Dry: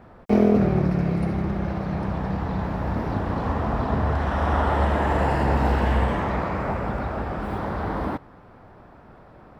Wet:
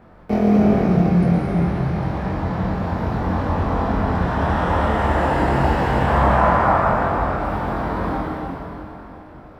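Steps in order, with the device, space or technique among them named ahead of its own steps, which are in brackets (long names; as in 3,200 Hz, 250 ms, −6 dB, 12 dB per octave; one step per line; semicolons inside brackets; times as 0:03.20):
0:06.07–0:06.90: flat-topped bell 1,000 Hz +9 dB
tunnel (flutter between parallel walls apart 3.9 metres, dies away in 0.23 s; convolution reverb RT60 3.0 s, pre-delay 105 ms, DRR −2 dB)
level −1 dB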